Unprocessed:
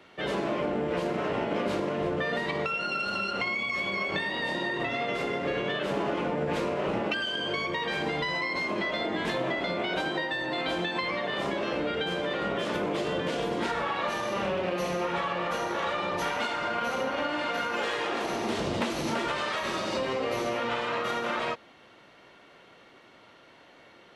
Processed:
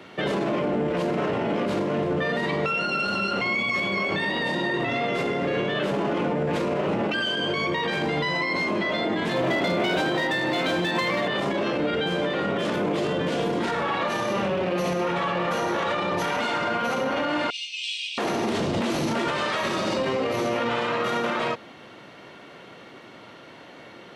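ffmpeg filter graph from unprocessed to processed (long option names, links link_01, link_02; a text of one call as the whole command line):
ffmpeg -i in.wav -filter_complex "[0:a]asettb=1/sr,asplit=3[link_01][link_02][link_03];[link_01]atrim=end=9.364[link_04];[link_02]atrim=start=9.36:end=11.28,asetpts=PTS-STARTPTS,afade=type=in:duration=0.004:curve=qsin,afade=type=out:start_time=1.916:duration=0.004:curve=qsin,asoftclip=type=hard:threshold=-26dB,aecho=1:1:692:0.335,atrim=end_sample=84672[link_05];[link_03]atrim=start=11.276[link_06];[link_04][link_05]acrossfade=duration=0.004:curve1=hsin:curve2=qsin[link_07];[link_07][link_06]acrossfade=duration=0.004:curve1=qsin:curve2=hsin,asettb=1/sr,asplit=3[link_08][link_09][link_10];[link_08]atrim=end=17.504[link_11];[link_09]atrim=start=17.5:end=18.18,asetpts=PTS-STARTPTS,afade=type=in:duration=0.004:curve=qsin,afade=type=out:start_time=0.676:duration=0.004:curve=qsin,asuperpass=centerf=4900:order=20:qfactor=0.74,bandreject=frequency=6900:width=6.8[link_12];[link_10]atrim=start=18.176[link_13];[link_11][link_12]acrossfade=duration=0.004:curve1=hsin:curve2=qsin[link_14];[link_14][link_13]acrossfade=duration=0.004:curve1=qsin:curve2=hsin,highpass=110,lowshelf=frequency=290:gain=7.5,alimiter=level_in=1.5dB:limit=-24dB:level=0:latency=1:release=31,volume=-1.5dB,volume=8dB" out.wav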